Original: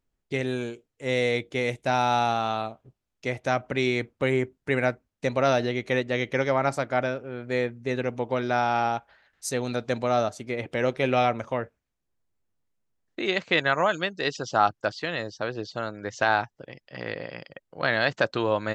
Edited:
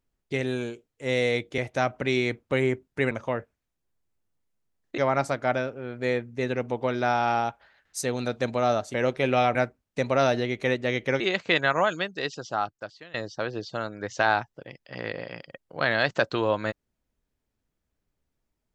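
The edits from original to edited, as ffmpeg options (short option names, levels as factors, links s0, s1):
-filter_complex "[0:a]asplit=8[s0][s1][s2][s3][s4][s5][s6][s7];[s0]atrim=end=1.582[s8];[s1]atrim=start=3.278:end=4.812[s9];[s2]atrim=start=11.348:end=13.222[s10];[s3]atrim=start=6.458:end=10.422[s11];[s4]atrim=start=10.738:end=11.352[s12];[s5]atrim=start=4.808:end=6.462[s13];[s6]atrim=start=13.218:end=15.16,asetpts=PTS-STARTPTS,afade=t=out:st=0.612:d=1.33:silence=0.0944061[s14];[s7]atrim=start=15.16,asetpts=PTS-STARTPTS,afade=t=in:d=0.004:c=hsin:silence=0.0944061[s15];[s8][s9]acrossfade=d=0.004:c1=hsin:c2=hsin[s16];[s16][s10]acrossfade=d=0.004:c1=hsin:c2=hsin[s17];[s17][s11]acrossfade=d=0.004:c1=hsin:c2=hsin[s18];[s18][s12]acrossfade=d=0.004:c1=hsin:c2=hsin[s19];[s19][s13]acrossfade=d=0.004:c1=hsin:c2=hsin[s20];[s14][s15]concat=n=2:v=0:a=1[s21];[s20][s21]acrossfade=d=0.004:c1=hsin:c2=hsin"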